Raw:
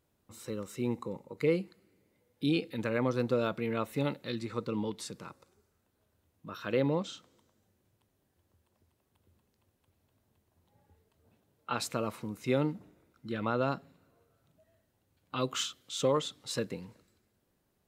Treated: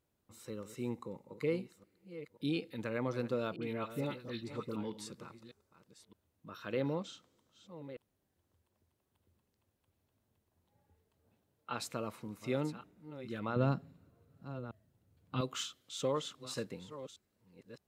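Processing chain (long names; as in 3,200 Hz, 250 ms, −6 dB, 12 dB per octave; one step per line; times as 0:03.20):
delay that plays each chunk backwards 613 ms, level −13 dB
0:03.56–0:04.76: all-pass dispersion highs, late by 58 ms, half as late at 1,300 Hz
0:13.56–0:15.41: parametric band 110 Hz +12.5 dB 2.8 octaves
level −6 dB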